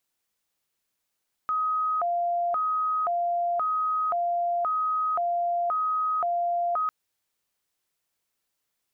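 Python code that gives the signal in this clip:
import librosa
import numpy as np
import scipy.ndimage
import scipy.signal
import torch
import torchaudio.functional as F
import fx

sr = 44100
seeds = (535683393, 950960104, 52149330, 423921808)

y = fx.siren(sr, length_s=5.4, kind='hi-lo', low_hz=695.0, high_hz=1260.0, per_s=0.95, wave='sine', level_db=-23.0)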